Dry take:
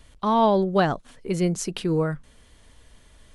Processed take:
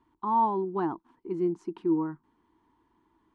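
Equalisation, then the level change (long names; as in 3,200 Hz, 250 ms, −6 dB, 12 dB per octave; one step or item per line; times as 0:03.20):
pair of resonant band-passes 560 Hz, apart 1.5 octaves
low-shelf EQ 450 Hz +5.5 dB
0.0 dB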